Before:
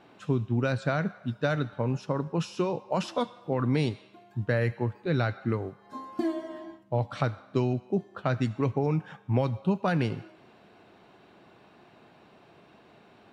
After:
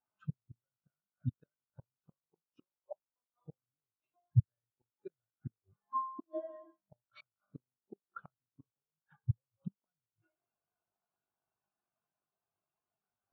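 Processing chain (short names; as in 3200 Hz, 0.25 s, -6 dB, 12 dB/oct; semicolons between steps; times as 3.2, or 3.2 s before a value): bell 290 Hz -13.5 dB 2.7 oct; flipped gate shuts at -30 dBFS, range -35 dB; buzz 50 Hz, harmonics 31, -67 dBFS 0 dB/oct; spectral expander 2.5:1; gain +7.5 dB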